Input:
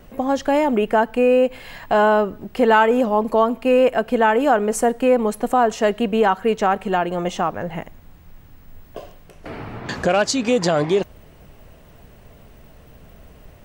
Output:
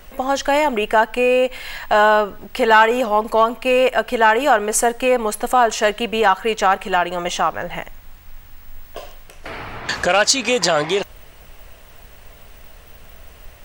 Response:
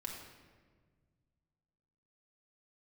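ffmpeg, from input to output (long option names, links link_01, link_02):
-af "equalizer=frequency=190:width=0.33:gain=-15,acontrast=79,volume=2dB"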